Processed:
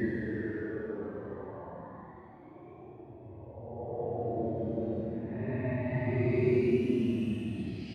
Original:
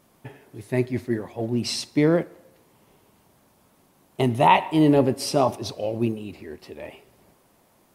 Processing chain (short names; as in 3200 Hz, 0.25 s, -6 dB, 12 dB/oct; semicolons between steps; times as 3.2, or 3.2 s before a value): bell 2600 Hz +3.5 dB 3 oct; on a send: echo 0.753 s -5 dB; on the sum: low-pass opened by the level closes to 300 Hz, open at -16 dBFS; Paulstretch 16×, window 0.05 s, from 1.14; gain -8 dB